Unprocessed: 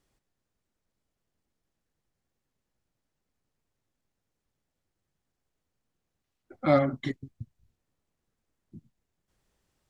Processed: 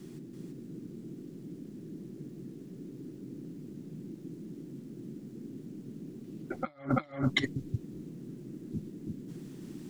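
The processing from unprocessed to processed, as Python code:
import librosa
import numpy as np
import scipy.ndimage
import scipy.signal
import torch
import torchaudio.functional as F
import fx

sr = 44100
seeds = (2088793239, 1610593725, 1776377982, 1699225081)

p1 = fx.tilt_shelf(x, sr, db=-4.0, hz=930.0)
p2 = fx.dmg_noise_band(p1, sr, seeds[0], low_hz=130.0, high_hz=350.0, level_db=-60.0)
p3 = p2 + fx.echo_single(p2, sr, ms=333, db=-3.0, dry=0)
p4 = fx.over_compress(p3, sr, threshold_db=-38.0, ratio=-0.5)
y = p4 * librosa.db_to_amplitude(6.0)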